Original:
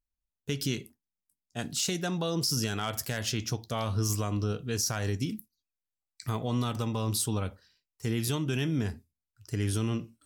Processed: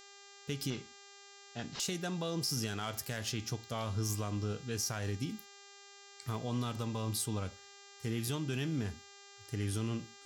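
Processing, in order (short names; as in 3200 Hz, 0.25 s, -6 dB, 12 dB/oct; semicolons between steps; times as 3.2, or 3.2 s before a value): 0.7–1.8 CVSD 32 kbps; buzz 400 Hz, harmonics 19, -50 dBFS -1 dB/oct; gain -6 dB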